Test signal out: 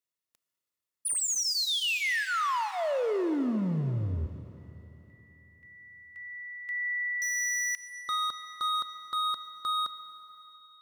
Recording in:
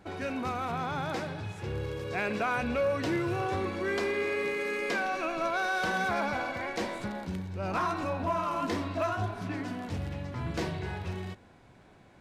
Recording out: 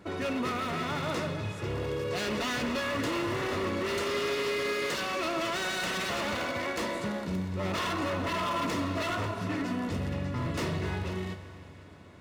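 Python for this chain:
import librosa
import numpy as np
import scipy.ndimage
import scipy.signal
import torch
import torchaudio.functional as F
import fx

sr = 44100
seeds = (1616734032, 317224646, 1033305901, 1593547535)

y = 10.0 ** (-30.0 / 20.0) * (np.abs((x / 10.0 ** (-30.0 / 20.0) + 3.0) % 4.0 - 2.0) - 1.0)
y = fx.notch_comb(y, sr, f0_hz=790.0)
y = fx.rev_schroeder(y, sr, rt60_s=3.5, comb_ms=25, drr_db=10.5)
y = F.gain(torch.from_numpy(y), 4.5).numpy()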